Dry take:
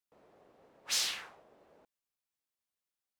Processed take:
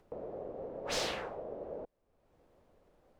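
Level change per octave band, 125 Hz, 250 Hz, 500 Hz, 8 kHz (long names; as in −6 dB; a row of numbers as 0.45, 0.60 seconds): can't be measured, +16.5 dB, +20.0 dB, −8.5 dB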